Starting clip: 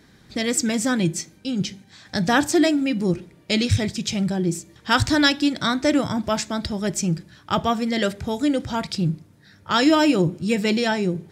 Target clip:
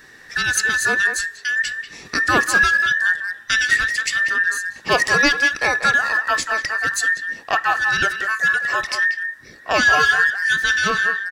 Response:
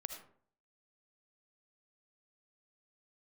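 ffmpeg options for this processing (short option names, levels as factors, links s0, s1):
-filter_complex "[0:a]afftfilt=real='real(if(between(b,1,1012),(2*floor((b-1)/92)+1)*92-b,b),0)':imag='imag(if(between(b,1,1012),(2*floor((b-1)/92)+1)*92-b,b),0)*if(between(b,1,1012),-1,1)':win_size=2048:overlap=0.75,asplit=2[s0][s1];[s1]acompressor=threshold=0.0282:ratio=10,volume=1.26[s2];[s0][s2]amix=inputs=2:normalize=0,asplit=2[s3][s4];[s4]adelay=190,highpass=300,lowpass=3400,asoftclip=type=hard:threshold=0.237,volume=0.447[s5];[s3][s5]amix=inputs=2:normalize=0"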